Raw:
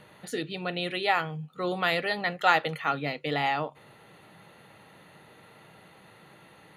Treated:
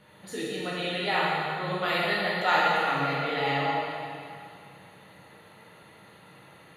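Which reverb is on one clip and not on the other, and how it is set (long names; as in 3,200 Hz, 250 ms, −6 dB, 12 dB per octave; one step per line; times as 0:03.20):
dense smooth reverb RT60 2.4 s, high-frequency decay 0.95×, DRR −7.5 dB
level −6.5 dB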